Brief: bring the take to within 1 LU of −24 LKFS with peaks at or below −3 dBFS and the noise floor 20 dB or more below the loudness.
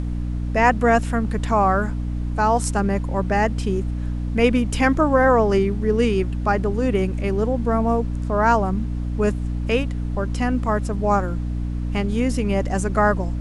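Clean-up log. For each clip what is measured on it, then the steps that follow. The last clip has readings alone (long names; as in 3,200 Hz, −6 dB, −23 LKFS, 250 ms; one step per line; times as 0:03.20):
mains hum 60 Hz; hum harmonics up to 300 Hz; level of the hum −22 dBFS; background noise floor −26 dBFS; target noise floor −41 dBFS; integrated loudness −21.0 LKFS; sample peak −2.5 dBFS; target loudness −24.0 LKFS
→ hum removal 60 Hz, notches 5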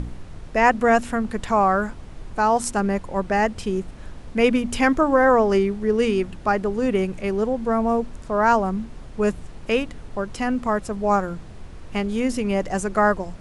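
mains hum none found; background noise floor −40 dBFS; target noise floor −42 dBFS
→ noise reduction from a noise print 6 dB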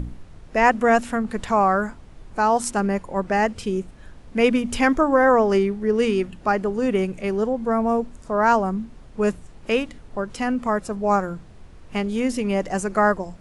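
background noise floor −45 dBFS; integrated loudness −22.0 LKFS; sample peak −3.5 dBFS; target loudness −24.0 LKFS
→ level −2 dB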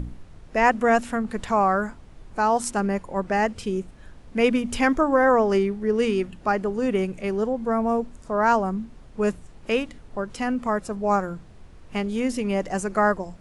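integrated loudness −24.0 LKFS; sample peak −5.5 dBFS; background noise floor −47 dBFS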